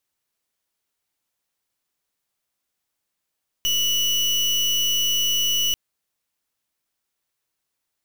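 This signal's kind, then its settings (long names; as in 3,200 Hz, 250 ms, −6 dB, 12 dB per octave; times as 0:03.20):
pulse wave 2,950 Hz, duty 32% −21 dBFS 2.09 s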